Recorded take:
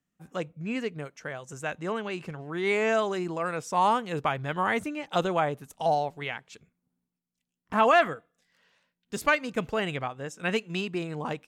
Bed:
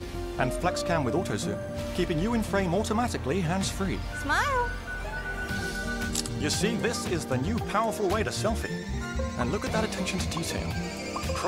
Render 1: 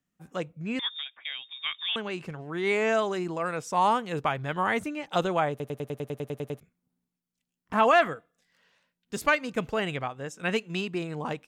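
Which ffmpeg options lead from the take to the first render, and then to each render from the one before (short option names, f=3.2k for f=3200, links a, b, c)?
-filter_complex "[0:a]asettb=1/sr,asplit=3[a][b][c];[a]atrim=end=0.794[d];[b]atrim=start=0.79:end=1.96,asetpts=PTS-STARTPTS,afade=t=in:d=0.004:c=qsin,afade=t=out:st=1.166:d=0.004:c=qsin,lowpass=f=3.2k:t=q:w=0.5098,lowpass=f=3.2k:t=q:w=0.6013,lowpass=f=3.2k:t=q:w=0.9,lowpass=f=3.2k:t=q:w=2.563,afreqshift=-3800[e];[c]atrim=start=1.956[f];[d][e]acrossfade=d=0.004:c1=hsin:c2=qsin[g];[g][f]acrossfade=d=0.004:c1=qsin:c2=hsin,asplit=12[h][i][j][k][l][m][n][o][p][q][r][s];[h]atrim=end=5.602[t];[i]atrim=start=5.498:end=5.602[u];[j]atrim=start=5.498:end=5.602[v];[k]atrim=start=5.498:end=5.602[w];[l]atrim=start=5.498:end=5.602[x];[m]atrim=start=5.498:end=5.602[y];[n]atrim=start=5.498:end=5.602[z];[o]atrim=start=5.498:end=5.602[aa];[p]atrim=start=5.498:end=5.602[ab];[q]atrim=start=5.498:end=5.602[ac];[r]atrim=start=5.498:end=5.602[ad];[s]atrim=start=6.598[ae];[t][u]acrossfade=d=0.004:c1=hsin:c2=hsin[af];[af][v]acrossfade=d=0.004:c1=hsin:c2=hsin[ag];[ag][w]acrossfade=d=0.004:c1=hsin:c2=hsin[ah];[ah][x]acrossfade=d=0.004:c1=hsin:c2=hsin[ai];[ai][y]acrossfade=d=0.004:c1=hsin:c2=hsin[aj];[aj][z]acrossfade=d=0.004:c1=hsin:c2=hsin[ak];[ak][aa]acrossfade=d=0.004:c1=hsin:c2=hsin[al];[al][ab]acrossfade=d=0.004:c1=hsin:c2=hsin[am];[am][ac]acrossfade=d=0.004:c1=hsin:c2=hsin[an];[an][ad]acrossfade=d=0.004:c1=hsin:c2=hsin[ao];[ao][ae]acrossfade=d=0.004:c1=hsin:c2=hsin"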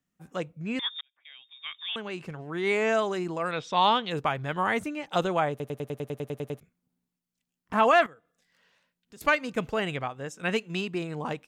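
-filter_complex "[0:a]asettb=1/sr,asplit=3[a][b][c];[a]atrim=end=3.514[d];[b]atrim=start=3.51:end=4.11,asetpts=PTS-STARTPTS,afade=t=in:d=0.004:c=qsin,afade=t=out:st=0.596:d=0.004:c=qsin,lowpass=f=3.6k:t=q:w=7[e];[c]atrim=start=4.106[f];[d][e]acrossfade=d=0.004:c1=hsin:c2=qsin[g];[g][f]acrossfade=d=0.004:c1=qsin:c2=hsin,asettb=1/sr,asplit=3[h][i][j];[h]atrim=end=8.064[k];[i]atrim=start=8.06:end=9.21,asetpts=PTS-STARTPTS,afade=t=in:d=0.004:c=qsin,afade=t=out:st=1.146:d=0.004:c=qsin,acompressor=threshold=-60dB:ratio=2:attack=3.2:release=140:knee=1:detection=peak[l];[j]atrim=start=9.206[m];[k][l]acrossfade=d=0.004:c1=hsin:c2=qsin[n];[n][m]acrossfade=d=0.004:c1=qsin:c2=hsin,asplit=2[o][p];[o]atrim=end=1.01,asetpts=PTS-STARTPTS,afade=t=out:st=1.006:d=0.004:c=hsin[q];[p]atrim=start=1.01,asetpts=PTS-STARTPTS,afade=t=in:d=1.4[r];[q][r]concat=n=2:v=0:a=1"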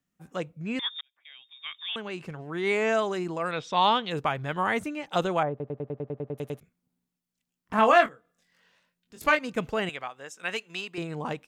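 -filter_complex "[0:a]asettb=1/sr,asplit=3[a][b][c];[a]atrim=end=5.434[d];[b]atrim=start=5.43:end=6.38,asetpts=PTS-STARTPTS,afade=t=in:d=0.004:c=qsin,afade=t=out:st=0.946:d=0.004:c=qsin,lowpass=1.1k[e];[c]atrim=start=6.376[f];[d][e]acrossfade=d=0.004:c1=hsin:c2=qsin[g];[g][f]acrossfade=d=0.004:c1=qsin:c2=hsin,asettb=1/sr,asplit=3[h][i][j];[h]atrim=end=7.764[k];[i]atrim=start=7.76:end=9.39,asetpts=PTS-STARTPTS,afade=t=in:d=0.004:c=qsin,afade=t=out:st=1.626:d=0.004:c=qsin,asplit=2[l][m];[m]adelay=23,volume=-6dB[n];[l][n]amix=inputs=2:normalize=0,atrim=end_sample=71883[o];[j]atrim=start=9.386[p];[k][o]acrossfade=d=0.004:c1=hsin:c2=qsin[q];[q][p]acrossfade=d=0.004:c1=qsin:c2=hsin,asettb=1/sr,asplit=3[r][s][t];[r]atrim=end=9.894[u];[s]atrim=start=9.89:end=10.98,asetpts=PTS-STARTPTS,afade=t=in:d=0.004:c=qsin,afade=t=out:st=1.086:d=0.004:c=qsin,highpass=f=970:p=1[v];[t]atrim=start=10.976[w];[u][v]acrossfade=d=0.004:c1=hsin:c2=qsin[x];[x][w]acrossfade=d=0.004:c1=qsin:c2=hsin"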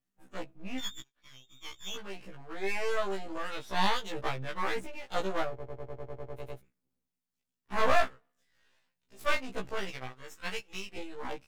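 -af "aeval=exprs='max(val(0),0)':c=same,afftfilt=real='re*1.73*eq(mod(b,3),0)':imag='im*1.73*eq(mod(b,3),0)':win_size=2048:overlap=0.75"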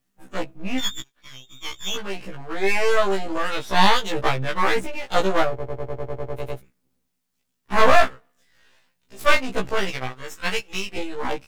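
-af "volume=12dB,alimiter=limit=-1dB:level=0:latency=1"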